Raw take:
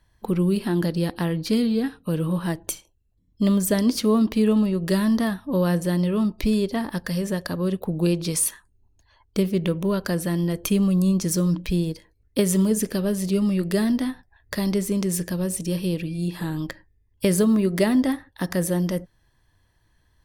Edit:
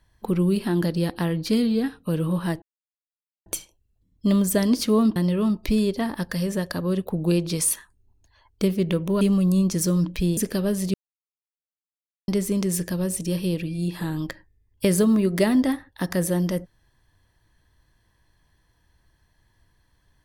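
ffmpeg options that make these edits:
-filter_complex "[0:a]asplit=7[a][b][c][d][e][f][g];[a]atrim=end=2.62,asetpts=PTS-STARTPTS,afade=t=out:st=2.616:d=0.004:c=hsin,apad=pad_dur=0.84[h];[b]atrim=start=2.62:end=4.322,asetpts=PTS-STARTPTS,afade=t=in:d=0.004:c=hsin[i];[c]atrim=start=5.908:end=9.962[j];[d]atrim=start=10.708:end=11.872[k];[e]atrim=start=12.768:end=13.34,asetpts=PTS-STARTPTS,afade=t=out:st=0.568:d=0.004:c=hsin[l];[f]atrim=start=13.34:end=14.68,asetpts=PTS-STARTPTS,volume=0[m];[g]atrim=start=14.68,asetpts=PTS-STARTPTS,afade=t=in:d=0.004:c=hsin[n];[h][i]concat=n=2:v=0:a=1[o];[o][j]acrossfade=d=0.004:c1=hsin:c2=hsin[p];[p][k]acrossfade=d=0.004:c1=hsin:c2=hsin[q];[l][m][n]concat=n=3:v=0:a=1[r];[q][r]acrossfade=d=0.004:c1=hsin:c2=hsin"

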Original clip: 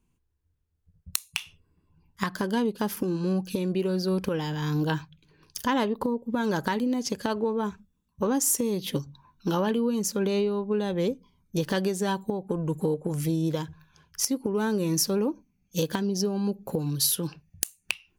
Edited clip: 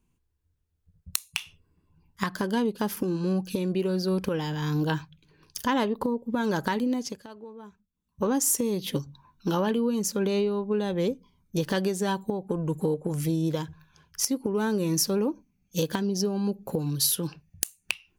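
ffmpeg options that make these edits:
-filter_complex "[0:a]asplit=3[a][b][c];[a]atrim=end=7.24,asetpts=PTS-STARTPTS,afade=t=out:st=6.93:d=0.31:silence=0.149624[d];[b]atrim=start=7.24:end=7.91,asetpts=PTS-STARTPTS,volume=-16.5dB[e];[c]atrim=start=7.91,asetpts=PTS-STARTPTS,afade=t=in:d=0.31:silence=0.149624[f];[d][e][f]concat=n=3:v=0:a=1"

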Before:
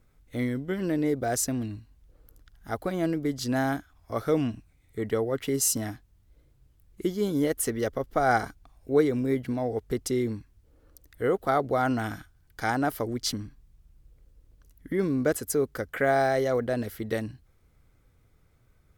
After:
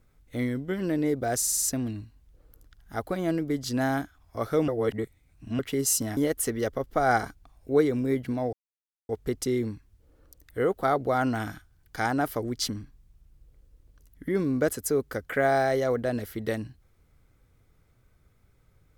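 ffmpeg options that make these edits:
-filter_complex "[0:a]asplit=10[a][b][c][d][e][f][g][h][i][j];[a]atrim=end=1.422[k];[b]atrim=start=1.368:end=1.422[l];[c]atrim=start=1.368:end=1.422[m];[d]atrim=start=1.368:end=1.422[n];[e]atrim=start=1.368:end=1.422[o];[f]atrim=start=1.368:end=4.432[p];[g]atrim=start=4.428:end=5.342,asetpts=PTS-STARTPTS,areverse[q];[h]atrim=start=5.338:end=5.922[r];[i]atrim=start=7.368:end=9.73,asetpts=PTS-STARTPTS,afade=t=out:st=2.358:d=0.004:c=hsin,apad=pad_dur=0.56[s];[j]atrim=start=9.73,asetpts=PTS-STARTPTS,afade=t=in:d=0.004:c=hsin[t];[k][l]acrossfade=d=0.004:c1=hsin:c2=hsin[u];[u][m]acrossfade=d=0.004:c1=hsin:c2=hsin[v];[v][n]acrossfade=d=0.004:c1=hsin:c2=hsin[w];[w][o]acrossfade=d=0.004:c1=hsin:c2=hsin[x];[x][p]acrossfade=d=0.004:c1=hsin:c2=hsin[y];[y][q]acrossfade=d=0.004:c1=hsin:c2=hsin[z];[z][r]acrossfade=d=0.004:c1=hsin:c2=hsin[aa];[s][t]concat=n=2:v=0:a=1[ab];[aa][ab]acrossfade=d=0.004:c1=hsin:c2=hsin"

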